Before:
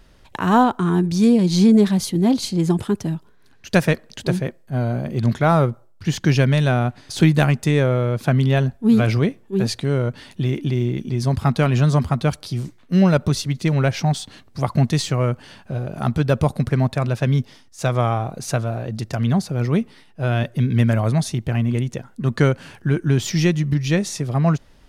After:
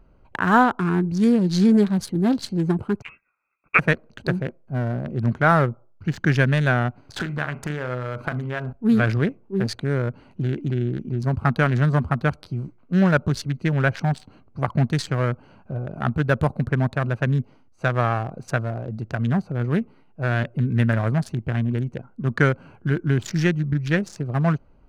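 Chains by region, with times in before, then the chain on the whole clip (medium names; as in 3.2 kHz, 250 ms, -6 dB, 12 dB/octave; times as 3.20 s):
3.02–3.79 s: level-controlled noise filter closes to 640 Hz, open at -19.5 dBFS + high-pass 310 Hz 24 dB/octave + frequency inversion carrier 2.9 kHz
7.16–8.73 s: peaking EQ 1.3 kHz +10.5 dB 2.2 oct + compression 10:1, threshold -21 dBFS + flutter echo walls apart 6.8 m, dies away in 0.28 s
whole clip: local Wiener filter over 25 samples; peaking EQ 1.6 kHz +11.5 dB 0.73 oct; trim -3 dB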